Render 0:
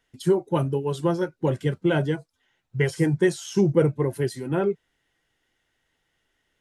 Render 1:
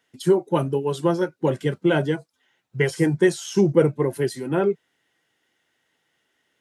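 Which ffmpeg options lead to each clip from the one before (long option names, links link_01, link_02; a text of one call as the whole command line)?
ffmpeg -i in.wav -af "highpass=160,volume=3dB" out.wav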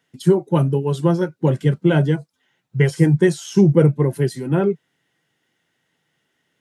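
ffmpeg -i in.wav -af "equalizer=frequency=150:width=1.2:gain=10" out.wav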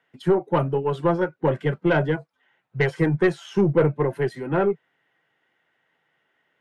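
ffmpeg -i in.wav -filter_complex "[0:a]acrossover=split=450 2700:gain=0.251 1 0.0891[link_01][link_02][link_03];[link_01][link_02][link_03]amix=inputs=3:normalize=0,aeval=exprs='(tanh(5.62*val(0)+0.25)-tanh(0.25))/5.62':channel_layout=same,volume=4.5dB" out.wav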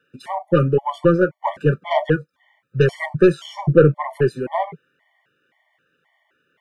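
ffmpeg -i in.wav -af "afftfilt=real='re*gt(sin(2*PI*1.9*pts/sr)*(1-2*mod(floor(b*sr/1024/590),2)),0)':imag='im*gt(sin(2*PI*1.9*pts/sr)*(1-2*mod(floor(b*sr/1024/590),2)),0)':win_size=1024:overlap=0.75,volume=7dB" out.wav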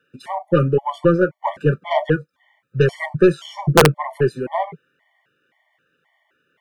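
ffmpeg -i in.wav -af "aeval=exprs='(mod(1.33*val(0)+1,2)-1)/1.33':channel_layout=same" out.wav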